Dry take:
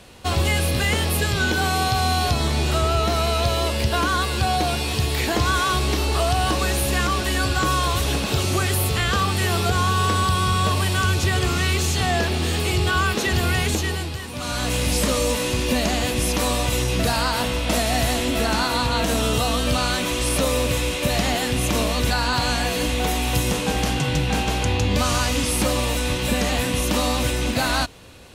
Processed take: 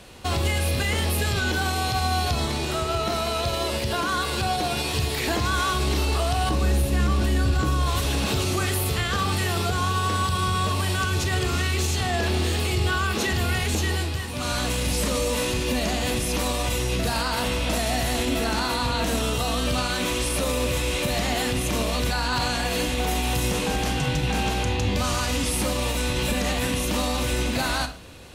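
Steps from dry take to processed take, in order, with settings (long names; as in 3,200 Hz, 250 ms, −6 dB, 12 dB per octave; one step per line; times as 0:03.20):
0:06.49–0:07.86: low-shelf EQ 440 Hz +11 dB
brickwall limiter −16 dBFS, peak gain reduction 12.5 dB
convolution reverb RT60 0.45 s, pre-delay 29 ms, DRR 9.5 dB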